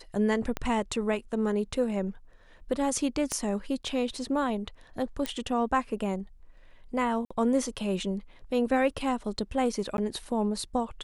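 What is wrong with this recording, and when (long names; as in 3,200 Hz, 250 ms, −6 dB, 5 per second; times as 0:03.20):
0:00.57: click −16 dBFS
0:03.32: click −16 dBFS
0:05.26: click −15 dBFS
0:07.25–0:07.30: drop-out 55 ms
0:09.97–0:09.98: drop-out 11 ms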